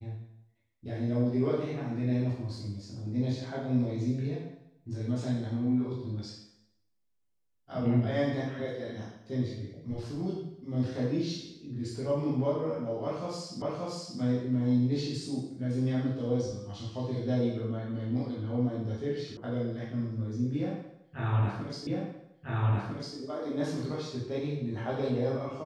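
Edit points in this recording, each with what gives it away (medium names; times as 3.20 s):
13.62 s: repeat of the last 0.58 s
19.37 s: sound stops dead
21.87 s: repeat of the last 1.3 s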